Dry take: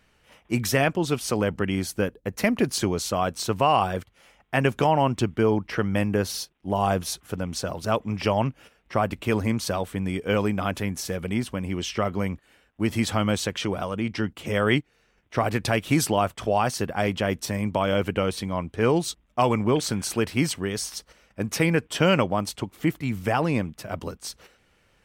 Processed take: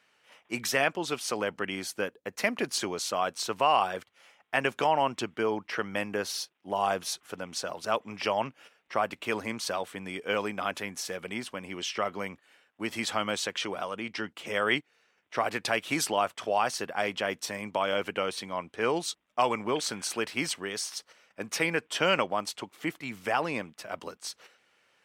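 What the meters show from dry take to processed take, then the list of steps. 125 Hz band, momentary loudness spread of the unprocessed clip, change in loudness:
−17.5 dB, 8 LU, −5.5 dB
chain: meter weighting curve A
level −2.5 dB

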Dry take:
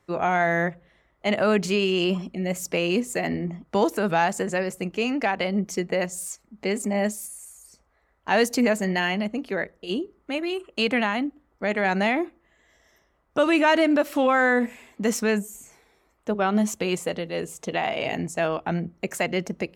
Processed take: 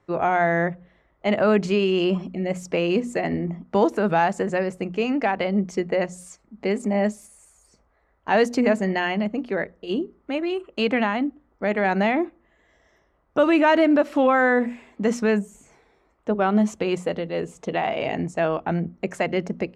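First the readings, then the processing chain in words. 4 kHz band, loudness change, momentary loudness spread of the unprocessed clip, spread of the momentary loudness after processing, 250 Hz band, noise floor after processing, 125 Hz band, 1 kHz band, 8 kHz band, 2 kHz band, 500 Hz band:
−3.0 dB, +1.5 dB, 10 LU, 10 LU, +2.5 dB, −65 dBFS, +2.0 dB, +2.0 dB, −8.5 dB, −0.5 dB, +2.5 dB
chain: low-pass filter 7,800 Hz 12 dB per octave
high-shelf EQ 2,500 Hz −10 dB
mains-hum notches 60/120/180/240 Hz
level +3 dB

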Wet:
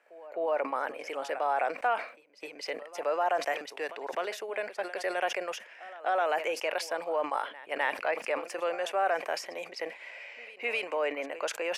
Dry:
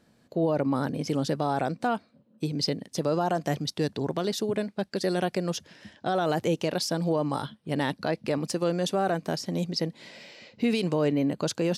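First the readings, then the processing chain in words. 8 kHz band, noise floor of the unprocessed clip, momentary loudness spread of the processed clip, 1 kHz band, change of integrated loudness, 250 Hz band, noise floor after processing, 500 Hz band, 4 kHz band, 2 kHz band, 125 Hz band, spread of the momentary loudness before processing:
−6.5 dB, −65 dBFS, 11 LU, +1.0 dB, −4.0 dB, −18.5 dB, −52 dBFS, −3.0 dB, −6.5 dB, +4.5 dB, below −35 dB, 7 LU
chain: high-pass filter 540 Hz 24 dB per octave
high shelf with overshoot 3,100 Hz −8.5 dB, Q 3
echo ahead of the sound 258 ms −18.5 dB
level that may fall only so fast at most 130 dB per second

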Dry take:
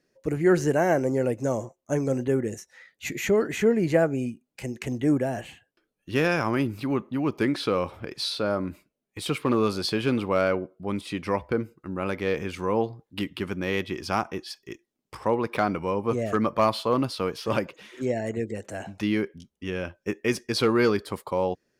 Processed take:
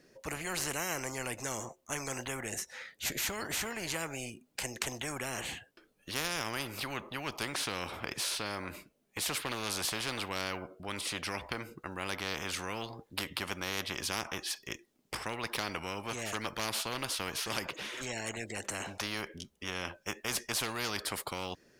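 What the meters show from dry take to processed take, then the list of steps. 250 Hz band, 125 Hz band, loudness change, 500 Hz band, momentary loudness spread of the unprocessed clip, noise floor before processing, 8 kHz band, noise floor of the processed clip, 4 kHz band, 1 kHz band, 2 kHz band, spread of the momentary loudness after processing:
−17.0 dB, −13.5 dB, −9.5 dB, −16.5 dB, 12 LU, −80 dBFS, +5.5 dB, −70 dBFS, −0.5 dB, −9.0 dB, −4.0 dB, 7 LU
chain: every bin compressed towards the loudest bin 4 to 1
level −5 dB

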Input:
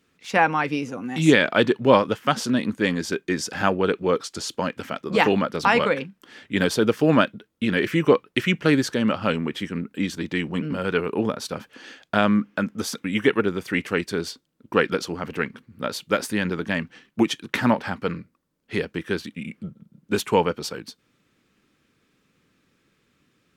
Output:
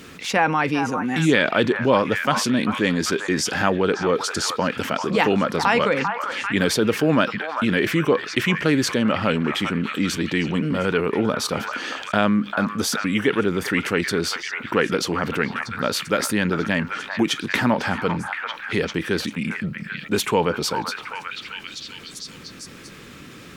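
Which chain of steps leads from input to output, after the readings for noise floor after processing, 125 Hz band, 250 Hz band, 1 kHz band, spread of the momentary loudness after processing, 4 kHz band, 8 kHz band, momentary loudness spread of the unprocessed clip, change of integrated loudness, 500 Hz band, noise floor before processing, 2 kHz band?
−41 dBFS, +2.5 dB, +1.5 dB, +2.0 dB, 11 LU, +4.0 dB, +6.5 dB, 12 LU, +1.5 dB, +0.5 dB, −68 dBFS, +3.0 dB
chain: echo through a band-pass that steps 394 ms, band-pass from 1,100 Hz, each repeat 0.7 octaves, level −9 dB
envelope flattener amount 50%
level −3 dB

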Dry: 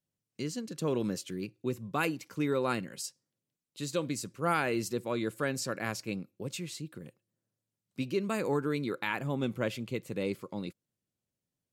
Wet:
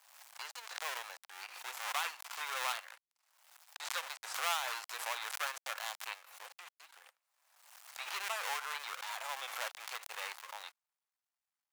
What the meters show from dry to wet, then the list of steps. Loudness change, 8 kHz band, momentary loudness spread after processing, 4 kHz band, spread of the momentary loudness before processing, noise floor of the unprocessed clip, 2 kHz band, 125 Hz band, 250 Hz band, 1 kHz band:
−5.5 dB, −1.5 dB, 16 LU, +2.5 dB, 10 LU, below −85 dBFS, −1.5 dB, below −40 dB, below −40 dB, −2.5 dB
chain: gap after every zero crossing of 0.27 ms
Butterworth high-pass 760 Hz 36 dB per octave
background raised ahead of every attack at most 59 dB per second
level +1 dB

